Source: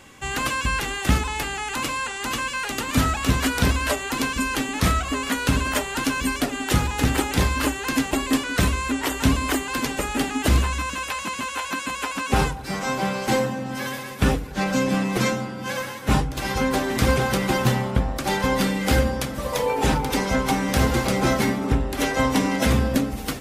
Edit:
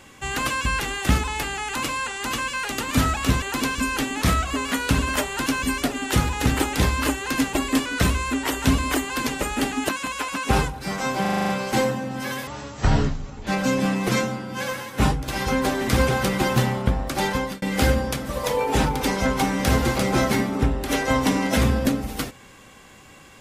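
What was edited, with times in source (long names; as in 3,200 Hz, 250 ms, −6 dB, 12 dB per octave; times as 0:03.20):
0:03.42–0:04.00: remove
0:10.47–0:11.72: remove
0:13.04: stutter 0.04 s, 8 plays
0:14.02–0:14.56: play speed 54%
0:18.38–0:18.71: fade out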